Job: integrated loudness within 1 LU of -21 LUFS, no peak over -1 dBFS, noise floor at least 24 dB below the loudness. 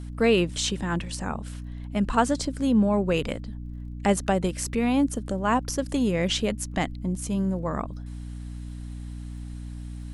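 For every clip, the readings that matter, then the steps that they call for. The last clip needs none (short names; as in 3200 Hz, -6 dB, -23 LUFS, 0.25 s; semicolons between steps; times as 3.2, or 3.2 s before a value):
ticks 24/s; hum 60 Hz; harmonics up to 300 Hz; hum level -34 dBFS; loudness -26.0 LUFS; peak -8.5 dBFS; loudness target -21.0 LUFS
-> de-click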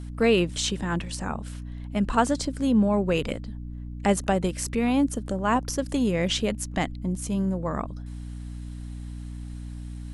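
ticks 0.099/s; hum 60 Hz; harmonics up to 300 Hz; hum level -34 dBFS
-> de-hum 60 Hz, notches 5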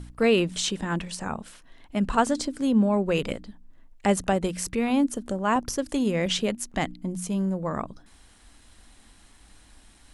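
hum none; loudness -26.0 LUFS; peak -8.5 dBFS; loudness target -21.0 LUFS
-> gain +5 dB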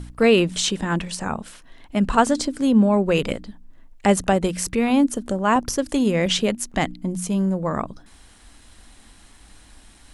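loudness -21.0 LUFS; peak -3.5 dBFS; noise floor -50 dBFS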